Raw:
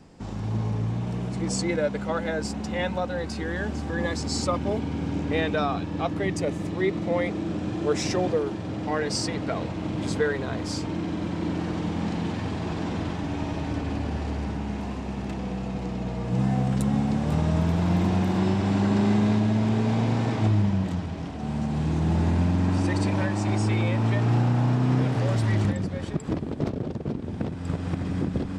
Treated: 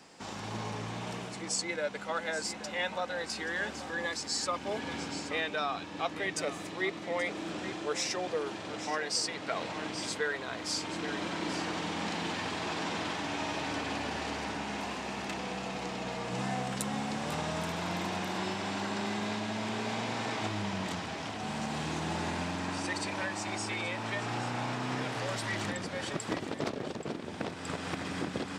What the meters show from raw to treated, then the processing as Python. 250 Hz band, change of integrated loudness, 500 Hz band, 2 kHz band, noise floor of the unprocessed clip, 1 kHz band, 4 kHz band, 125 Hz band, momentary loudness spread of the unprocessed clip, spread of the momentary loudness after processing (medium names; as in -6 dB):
-12.0 dB, -8.5 dB, -7.5 dB, 0.0 dB, -33 dBFS, -2.5 dB, +1.5 dB, -17.0 dB, 8 LU, 4 LU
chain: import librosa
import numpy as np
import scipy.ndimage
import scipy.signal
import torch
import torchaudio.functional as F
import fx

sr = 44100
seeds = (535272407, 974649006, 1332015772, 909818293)

p1 = fx.highpass(x, sr, hz=1400.0, slope=6)
p2 = p1 + fx.echo_single(p1, sr, ms=829, db=-14.0, dry=0)
p3 = fx.rider(p2, sr, range_db=4, speed_s=0.5)
y = F.gain(torch.from_numpy(p3), 2.5).numpy()